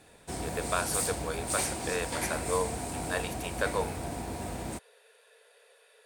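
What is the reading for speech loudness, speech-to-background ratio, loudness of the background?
-34.5 LUFS, 0.0 dB, -34.5 LUFS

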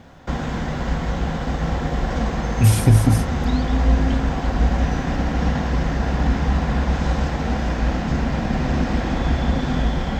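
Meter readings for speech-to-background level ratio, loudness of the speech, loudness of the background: 5.0 dB, -17.5 LUFS, -22.5 LUFS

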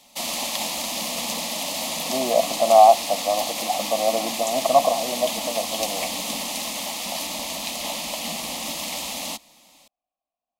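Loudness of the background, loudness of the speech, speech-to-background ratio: -26.5 LUFS, -21.0 LUFS, 5.5 dB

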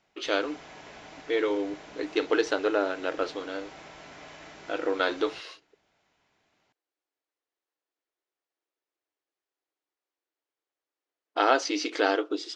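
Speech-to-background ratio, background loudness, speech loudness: 18.0 dB, -46.5 LUFS, -28.5 LUFS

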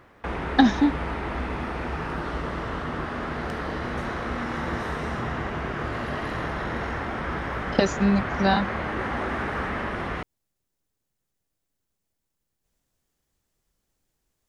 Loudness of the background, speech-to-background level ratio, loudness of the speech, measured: -30.0 LUFS, 7.0 dB, -23.0 LUFS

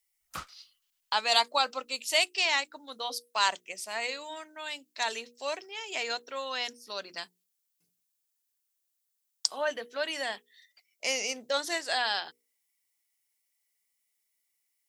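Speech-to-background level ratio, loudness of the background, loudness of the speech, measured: 14.0 dB, -44.5 LUFS, -30.5 LUFS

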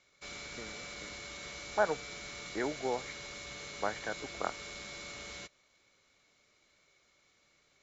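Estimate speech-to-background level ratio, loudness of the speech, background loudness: 6.5 dB, -37.0 LUFS, -43.5 LUFS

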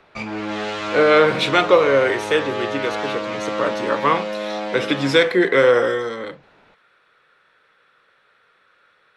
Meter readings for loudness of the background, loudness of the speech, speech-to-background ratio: -26.5 LUFS, -18.5 LUFS, 8.0 dB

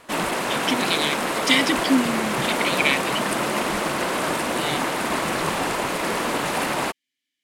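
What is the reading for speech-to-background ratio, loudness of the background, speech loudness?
-0.5 dB, -23.5 LUFS, -24.0 LUFS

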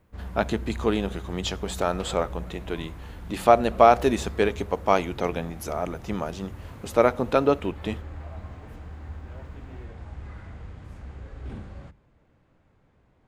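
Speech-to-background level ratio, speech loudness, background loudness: 15.5 dB, -25.0 LUFS, -40.5 LUFS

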